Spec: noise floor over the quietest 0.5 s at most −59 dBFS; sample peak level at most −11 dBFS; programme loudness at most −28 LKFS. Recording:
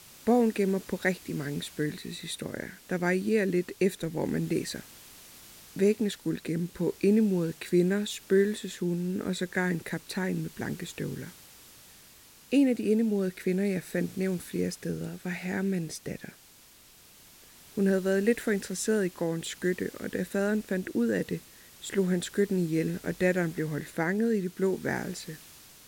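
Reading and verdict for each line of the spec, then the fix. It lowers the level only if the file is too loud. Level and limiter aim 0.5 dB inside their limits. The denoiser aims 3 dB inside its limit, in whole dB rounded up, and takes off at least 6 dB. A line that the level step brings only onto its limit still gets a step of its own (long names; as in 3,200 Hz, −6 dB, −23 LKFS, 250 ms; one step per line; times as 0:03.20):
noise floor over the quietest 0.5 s −56 dBFS: out of spec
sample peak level −12.0 dBFS: in spec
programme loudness −29.5 LKFS: in spec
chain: broadband denoise 6 dB, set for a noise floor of −56 dBFS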